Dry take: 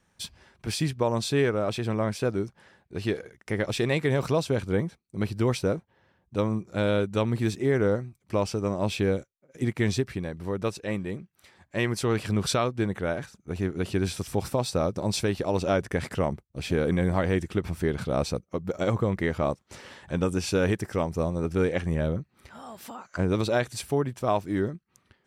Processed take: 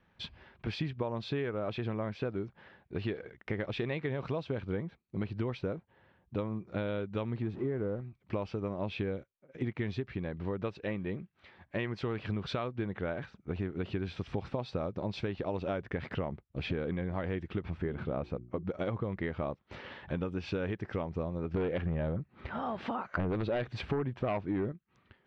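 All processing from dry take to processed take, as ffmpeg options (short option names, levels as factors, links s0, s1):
-filter_complex "[0:a]asettb=1/sr,asplit=3[s0][s1][s2];[s0]atrim=end=7.424[s3];[s1]atrim=start=7.42:end=8.01,asetpts=PTS-STARTPTS,afade=t=in:d=0.004:c=qsin,afade=t=out:st=0.586:d=0.004:c=qsin,aeval=exprs='val(0)+0.5*0.0168*sgn(val(0))':c=same,equalizer=f=4200:t=o:w=2.9:g=-13[s4];[s2]atrim=start=8.006[s5];[s3][s4]acrossfade=d=0.004:c1=hsin:c2=qsin[s6];[s6][s5]acrossfade=d=0.004:c1=qsin:c2=hsin,asettb=1/sr,asplit=3[s7][s8][s9];[s7]atrim=end=17.774[s10];[s8]atrim=start=17.77:end=18.63,asetpts=PTS-STARTPTS,afade=t=in:d=0.004:c=qsin,afade=t=out:st=0.856:d=0.004:c=qsin,deesser=0.8,equalizer=f=4800:w=0.82:g=-9,bandreject=f=60:t=h:w=6,bandreject=f=120:t=h:w=6,bandreject=f=180:t=h:w=6,bandreject=f=240:t=h:w=6,bandreject=f=300:t=h:w=6,bandreject=f=360:t=h:w=6[s11];[s9]atrim=start=18.626[s12];[s10][s11]acrossfade=d=0.004:c1=hsin:c2=qsin[s13];[s13][s12]acrossfade=d=0.004:c1=qsin:c2=hsin,asettb=1/sr,asplit=3[s14][s15][s16];[s14]atrim=end=21.544[s17];[s15]atrim=start=21.54:end=24.72,asetpts=PTS-STARTPTS,afade=t=in:d=0.004:c=qsin,afade=t=out:st=3.176:d=0.004:c=qsin,highshelf=f=2600:g=-8,aeval=exprs='0.237*sin(PI/2*2*val(0)/0.237)':c=same[s18];[s16]atrim=start=24.716[s19];[s17][s18]acrossfade=d=0.004:c1=hsin:c2=qsin[s20];[s20][s19]acrossfade=d=0.004:c1=qsin:c2=hsin,lowpass=f=3500:w=0.5412,lowpass=f=3500:w=1.3066,acompressor=threshold=0.0282:ratio=6"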